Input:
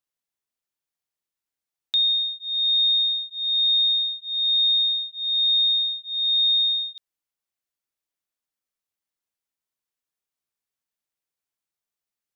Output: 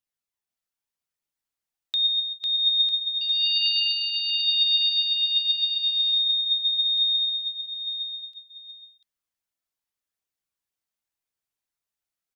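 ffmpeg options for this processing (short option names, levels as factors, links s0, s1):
-filter_complex "[0:a]asettb=1/sr,asplit=3[s0][s1][s2];[s0]atrim=end=3.214[s3];[s1]atrim=start=3.21:end=4.28,asetpts=PTS-STARTPTS,afade=t=in:d=0.004:c=qsin,afade=t=out:st=1.066:d=0.004:c=qsin,aeval=exprs='val(0)*sin(2*PI*880*n/s)':c=same[s4];[s2]atrim=start=4.276[s5];[s3][s4]acrossfade=d=0.004:c1=hsin:c2=qsin[s6];[s6][s5]acrossfade=d=0.004:c1=qsin:c2=hsin,flanger=delay=0.3:depth=1.3:regen=64:speed=0.78:shape=triangular,aecho=1:1:500|950|1355|1720|2048:0.631|0.398|0.251|0.158|0.1,volume=1.26"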